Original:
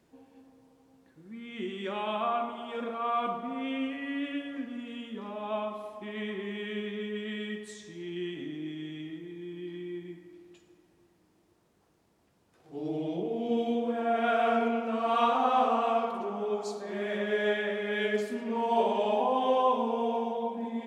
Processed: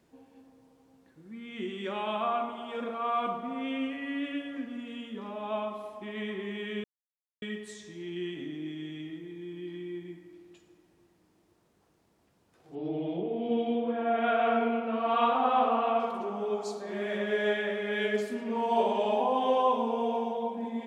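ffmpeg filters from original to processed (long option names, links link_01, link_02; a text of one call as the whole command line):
ffmpeg -i in.wav -filter_complex "[0:a]asettb=1/sr,asplit=3[link_01][link_02][link_03];[link_01]atrim=end=12.754[link_04];[link_02]atrim=start=12.75:end=16,asetpts=PTS-STARTPTS,afade=type=in:duration=0.004:curve=qsin,afade=type=out:start_time=3.246:duration=0.004:curve=qsin,lowpass=frequency=3800:width=0.5412,lowpass=frequency=3800:width=1.3066[link_05];[link_03]atrim=start=15.996[link_06];[link_04][link_05]acrossfade=duration=0.004:curve1=hsin:curve2=qsin[link_07];[link_07][link_06]acrossfade=duration=0.004:curve1=qsin:curve2=hsin,asplit=3[link_08][link_09][link_10];[link_08]atrim=end=6.84,asetpts=PTS-STARTPTS,afade=type=out:start_time=6.836:duration=0.004:curve=hsin[link_11];[link_09]atrim=start=6.84:end=7.42,asetpts=PTS-STARTPTS,volume=0[link_12];[link_10]atrim=start=7.42,asetpts=PTS-STARTPTS,afade=type=in:duration=0.004:curve=hsin[link_13];[link_11][link_12][link_13]concat=n=3:v=0:a=1" out.wav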